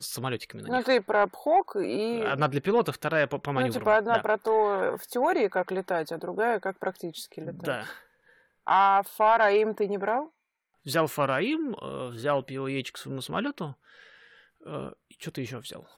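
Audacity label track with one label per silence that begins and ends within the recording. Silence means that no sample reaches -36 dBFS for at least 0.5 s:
7.920000	8.670000	silence
10.250000	10.870000	silence
13.720000	14.670000	silence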